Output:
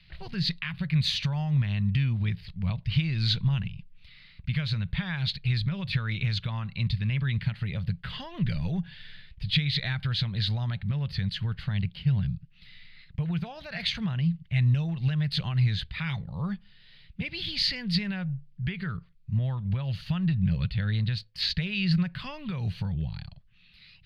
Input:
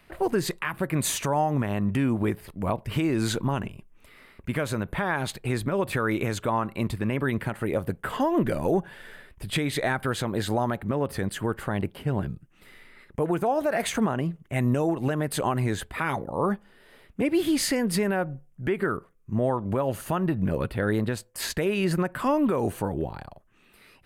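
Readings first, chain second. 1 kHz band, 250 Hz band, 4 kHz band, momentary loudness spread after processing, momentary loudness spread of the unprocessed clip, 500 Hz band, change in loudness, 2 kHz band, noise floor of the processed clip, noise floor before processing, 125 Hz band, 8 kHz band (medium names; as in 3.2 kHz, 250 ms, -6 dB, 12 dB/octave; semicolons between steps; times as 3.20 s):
-16.0 dB, -5.5 dB, +6.0 dB, 10 LU, 7 LU, -20.5 dB, -2.0 dB, -4.0 dB, -56 dBFS, -59 dBFS, +4.0 dB, under -15 dB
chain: FFT filter 170 Hz 0 dB, 290 Hz -28 dB, 690 Hz -23 dB, 1.2 kHz -19 dB, 2.1 kHz -6 dB, 4.4 kHz +5 dB, 7.5 kHz -30 dB; trim +4.5 dB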